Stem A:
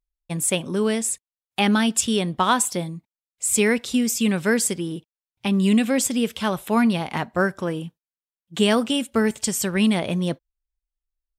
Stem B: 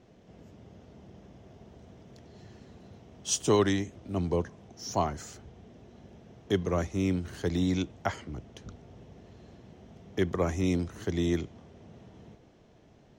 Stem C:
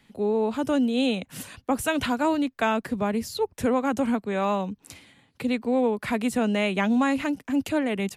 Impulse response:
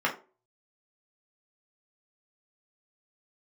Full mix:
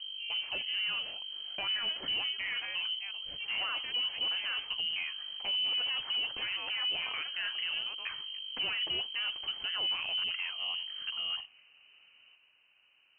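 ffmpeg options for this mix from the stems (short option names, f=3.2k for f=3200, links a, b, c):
-filter_complex "[0:a]aeval=exprs='val(0)+0.0178*(sin(2*PI*50*n/s)+sin(2*PI*2*50*n/s)/2+sin(2*PI*3*50*n/s)/3+sin(2*PI*4*50*n/s)/4+sin(2*PI*5*50*n/s)/5)':c=same,flanger=delay=3.8:depth=5.2:regen=67:speed=1.8:shape=sinusoidal,volume=-0.5dB[a];[1:a]highpass=280,volume=-5dB[b];[2:a]highpass=370,volume=-16.5dB,asplit=2[c][d];[d]apad=whole_len=581493[e];[b][e]sidechaincompress=threshold=-45dB:ratio=8:attack=29:release=235[f];[a][f][c]amix=inputs=3:normalize=0,asoftclip=type=tanh:threshold=-24dB,lowpass=f=2.7k:t=q:w=0.5098,lowpass=f=2.7k:t=q:w=0.6013,lowpass=f=2.7k:t=q:w=0.9,lowpass=f=2.7k:t=q:w=2.563,afreqshift=-3200,alimiter=level_in=2dB:limit=-24dB:level=0:latency=1:release=47,volume=-2dB"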